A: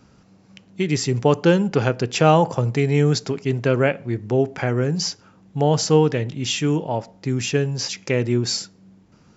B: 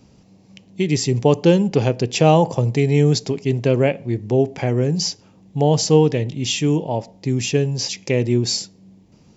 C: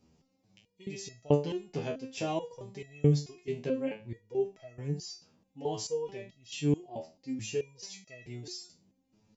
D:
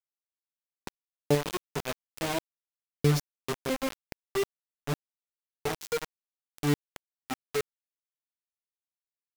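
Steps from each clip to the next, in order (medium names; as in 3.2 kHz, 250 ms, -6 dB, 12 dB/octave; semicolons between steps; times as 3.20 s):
peaking EQ 1.4 kHz -14 dB 0.64 oct; trim +2.5 dB
resonator arpeggio 4.6 Hz 80–650 Hz; trim -6 dB
bit crusher 5-bit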